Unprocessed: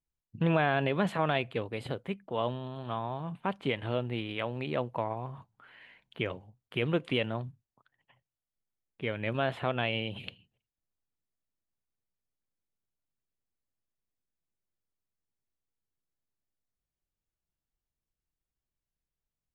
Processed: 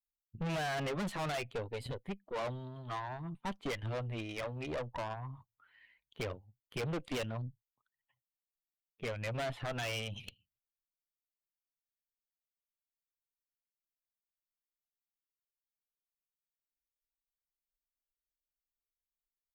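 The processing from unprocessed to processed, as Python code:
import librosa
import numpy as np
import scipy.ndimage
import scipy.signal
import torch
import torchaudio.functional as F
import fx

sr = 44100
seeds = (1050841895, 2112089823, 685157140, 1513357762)

y = fx.bin_expand(x, sr, power=1.5)
y = fx.tube_stage(y, sr, drive_db=41.0, bias=0.7)
y = y * librosa.db_to_amplitude(7.0)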